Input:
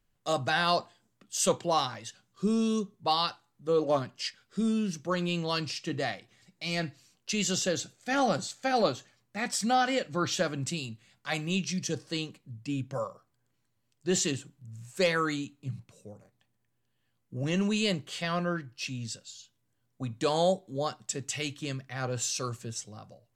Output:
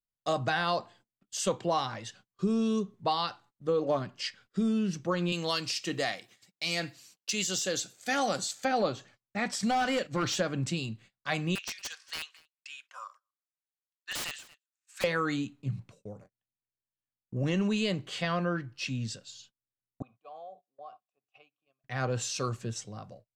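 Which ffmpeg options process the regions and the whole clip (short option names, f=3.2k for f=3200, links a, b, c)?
-filter_complex "[0:a]asettb=1/sr,asplit=3[a][b][c];[a]atrim=end=5.324[d];[b]atrim=start=5.32:end=8.65,asetpts=PTS-STARTPTS,afade=t=in:d=0.004:c=qsin,afade=t=out:st=3.326:d=0.004:c=qsin,highpass=f=250:p=1,deesser=0.6,aemphasis=mode=production:type=75fm[e];[c]atrim=start=8.646[f];[d][e]acrossfade=d=0.004:c1=hsin:c2=qsin[g];[g][f]acrossfade=d=0.004:c1=qsin:c2=hsin,asettb=1/sr,asplit=3[h][i][j];[h]atrim=end=9.624[k];[i]atrim=start=9.62:end=10.4,asetpts=PTS-STARTPTS,afade=t=in:d=0.004:c=qsin,afade=t=out:st=0.776:d=0.004:c=qsin,aemphasis=mode=production:type=cd,agate=range=-8dB:threshold=-44dB:ratio=16:release=100:detection=peak,asoftclip=type=hard:threshold=-24.5dB[l];[j]atrim=start=10.396[m];[k][l]acrossfade=d=0.004:c1=hsin:c2=qsin[n];[n][m]acrossfade=d=0.004:c1=qsin:c2=hsin,asettb=1/sr,asplit=3[o][p][q];[o]atrim=end=11.554[r];[p]atrim=start=11.55:end=15.04,asetpts=PTS-STARTPTS,afade=t=in:d=0.004:c=qsin,afade=t=out:st=3.486:d=0.004:c=qsin,highpass=f=1.3k:w=0.5412,highpass=f=1.3k:w=1.3066,aeval=exprs='(mod(21.1*val(0)+1,2)-1)/21.1':c=same,aecho=1:1:233:0.0891,atrim=end_sample=153909[s];[q]atrim=start=15.036[t];[r][s]acrossfade=d=0.004:c1=hsin:c2=qsin[u];[u][t]acrossfade=d=0.004:c1=qsin:c2=hsin,asettb=1/sr,asplit=3[v][w][x];[v]atrim=end=20.024[y];[w]atrim=start=20.02:end=21.84,asetpts=PTS-STARTPTS,afade=t=in:d=0.004:c=qsin,afade=t=out:st=1.816:d=0.004:c=qsin,bandreject=f=60:t=h:w=6,bandreject=f=120:t=h:w=6,bandreject=f=180:t=h:w=6,acompressor=threshold=-36dB:ratio=16:attack=3.2:release=140:knee=1:detection=peak,asplit=3[z][aa][ab];[z]bandpass=f=730:t=q:w=8,volume=0dB[ac];[aa]bandpass=f=1.09k:t=q:w=8,volume=-6dB[ad];[ab]bandpass=f=2.44k:t=q:w=8,volume=-9dB[ae];[ac][ad][ae]amix=inputs=3:normalize=0[af];[x]atrim=start=21.836[ag];[y][af]acrossfade=d=0.004:c1=hsin:c2=qsin[ah];[ah][ag]acrossfade=d=0.004:c1=qsin:c2=hsin,agate=range=-28dB:threshold=-55dB:ratio=16:detection=peak,acompressor=threshold=-29dB:ratio=3,lowpass=f=3.6k:p=1,volume=3.5dB"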